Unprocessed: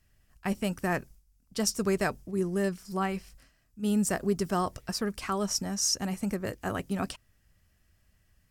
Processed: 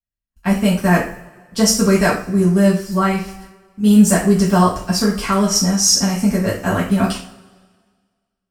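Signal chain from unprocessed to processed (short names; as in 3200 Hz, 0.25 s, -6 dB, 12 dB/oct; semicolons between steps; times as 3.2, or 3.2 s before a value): gate -56 dBFS, range -36 dB; AGC gain up to 3.5 dB; two-slope reverb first 0.4 s, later 1.7 s, from -22 dB, DRR -8 dB; gain +1.5 dB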